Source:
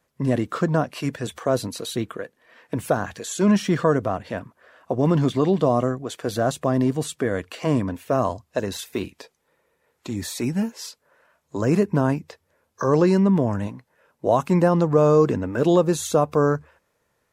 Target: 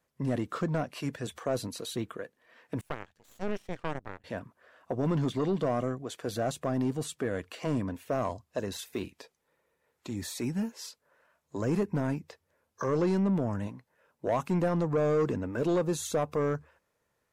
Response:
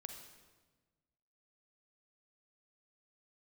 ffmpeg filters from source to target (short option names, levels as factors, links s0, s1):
-filter_complex "[0:a]asettb=1/sr,asplit=3[s0][s1][s2];[s0]atrim=end=2.814[s3];[s1]atrim=start=2.81:end=4.24,asetpts=PTS-STARTPTS,afade=t=in:d=0.004:c=qsin,afade=t=out:st=1.426:d=0.004:c=qsin,aeval=exprs='0.531*(cos(1*acos(clip(val(0)/0.531,-1,1)))-cos(1*PI/2))+0.15*(cos(2*acos(clip(val(0)/0.531,-1,1)))-cos(2*PI/2))+0.188*(cos(3*acos(clip(val(0)/0.531,-1,1)))-cos(3*PI/2))+0.00944*(cos(6*acos(clip(val(0)/0.531,-1,1)))-cos(6*PI/2))':c=same[s4];[s2]atrim=start=4.236[s5];[s3][s4]acrossfade=d=0.004:c1=hsin:c2=qsin[s6];[s6][s5]acrossfade=d=0.004:c1=qsin:c2=hsin,asoftclip=type=tanh:threshold=0.211,volume=0.447"